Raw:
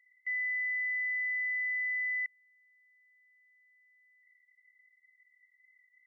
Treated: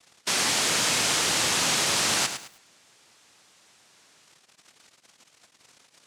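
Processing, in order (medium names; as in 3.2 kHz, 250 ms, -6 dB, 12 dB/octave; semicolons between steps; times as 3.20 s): noise-vocoded speech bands 1; bit-crushed delay 106 ms, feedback 35%, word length 9-bit, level -8.5 dB; trim +8 dB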